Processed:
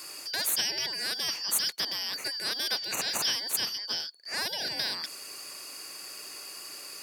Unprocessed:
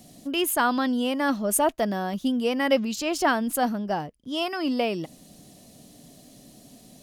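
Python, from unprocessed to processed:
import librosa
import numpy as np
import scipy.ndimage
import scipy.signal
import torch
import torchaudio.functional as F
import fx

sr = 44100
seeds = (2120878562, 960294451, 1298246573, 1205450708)

y = fx.band_shuffle(x, sr, order='4321')
y = scipy.signal.sosfilt(scipy.signal.butter(2, 220.0, 'highpass', fs=sr, output='sos'), y)
y = fx.spectral_comp(y, sr, ratio=2.0)
y = y * librosa.db_to_amplitude(-4.5)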